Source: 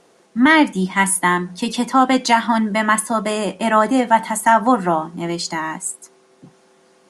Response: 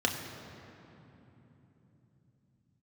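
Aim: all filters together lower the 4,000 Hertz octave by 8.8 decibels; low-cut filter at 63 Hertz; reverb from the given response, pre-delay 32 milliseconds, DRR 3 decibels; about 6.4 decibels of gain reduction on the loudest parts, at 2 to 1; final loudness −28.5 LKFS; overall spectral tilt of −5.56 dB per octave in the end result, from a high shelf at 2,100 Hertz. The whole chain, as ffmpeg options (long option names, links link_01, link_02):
-filter_complex "[0:a]highpass=63,highshelf=frequency=2100:gain=-8.5,equalizer=frequency=4000:width_type=o:gain=-3.5,acompressor=threshold=-21dB:ratio=2,asplit=2[link_01][link_02];[1:a]atrim=start_sample=2205,adelay=32[link_03];[link_02][link_03]afir=irnorm=-1:irlink=0,volume=-12.5dB[link_04];[link_01][link_04]amix=inputs=2:normalize=0,volume=-7.5dB"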